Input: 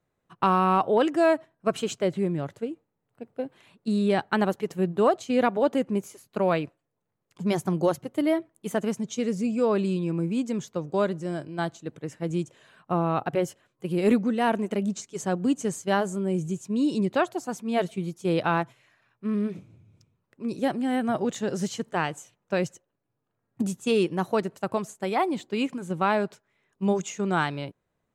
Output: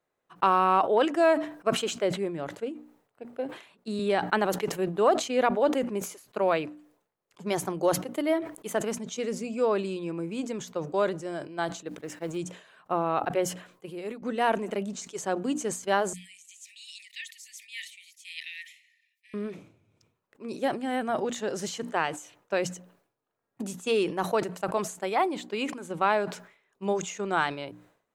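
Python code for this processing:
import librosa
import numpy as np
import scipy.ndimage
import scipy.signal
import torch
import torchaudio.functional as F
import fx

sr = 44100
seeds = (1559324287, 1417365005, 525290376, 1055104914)

y = fx.band_squash(x, sr, depth_pct=40, at=(3.99, 4.97))
y = fx.law_mismatch(y, sr, coded='A', at=(11.88, 12.37))
y = fx.cheby1_highpass(y, sr, hz=1800.0, order=10, at=(16.13, 19.34))
y = fx.edit(y, sr, fx.fade_out_to(start_s=13.46, length_s=0.76, floor_db=-20.0), tone=tone)
y = fx.bass_treble(y, sr, bass_db=-13, treble_db=-2)
y = fx.hum_notches(y, sr, base_hz=60, count=5)
y = fx.sustainer(y, sr, db_per_s=110.0)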